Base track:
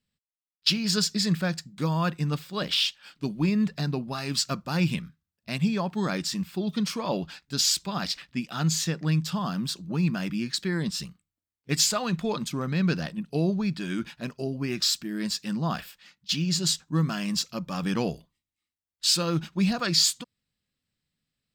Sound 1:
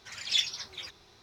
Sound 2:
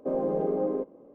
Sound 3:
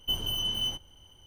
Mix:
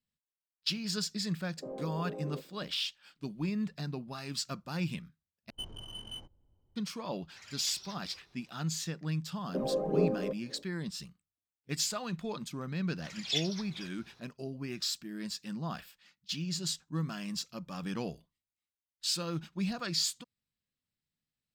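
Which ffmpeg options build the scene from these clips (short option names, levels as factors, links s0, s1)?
-filter_complex "[2:a]asplit=2[s0][s1];[1:a]asplit=2[s2][s3];[0:a]volume=0.335[s4];[s0]alimiter=level_in=1.06:limit=0.0631:level=0:latency=1:release=71,volume=0.944[s5];[3:a]adynamicsmooth=sensitivity=4:basefreq=590[s6];[s2]asoftclip=type=tanh:threshold=0.0355[s7];[s1]aphaser=in_gain=1:out_gain=1:delay=1.8:decay=0.54:speed=1.9:type=sinusoidal[s8];[s4]asplit=2[s9][s10];[s9]atrim=end=5.504[s11];[s6]atrim=end=1.26,asetpts=PTS-STARTPTS,volume=0.299[s12];[s10]atrim=start=6.756[s13];[s5]atrim=end=1.14,asetpts=PTS-STARTPTS,volume=0.335,afade=t=in:d=0.004:c=hsin,afade=t=out:st=1.136:d=0.004:c=hsin,adelay=1570[s14];[s7]atrim=end=1.22,asetpts=PTS-STARTPTS,volume=0.335,afade=t=in:d=0.004:c=hsin,afade=t=out:st=1.216:d=0.004:c=hsin,adelay=321930S[s15];[s8]atrim=end=1.14,asetpts=PTS-STARTPTS,volume=0.531,afade=t=in:d=0.004:c=hsin,afade=t=out:st=1.136:d=0.004:c=hsin,adelay=9490[s16];[s3]atrim=end=1.22,asetpts=PTS-STARTPTS,volume=0.531,afade=t=in:d=0.004:c=hsin,afade=t=out:st=1.216:d=0.004:c=hsin,adelay=12980[s17];[s11][s12]acrossfade=d=0.004:c1=hsin:c2=hsin[s18];[s18][s13]acrossfade=d=0.004:c1=hsin:c2=hsin[s19];[s19][s14][s15][s16][s17]amix=inputs=5:normalize=0"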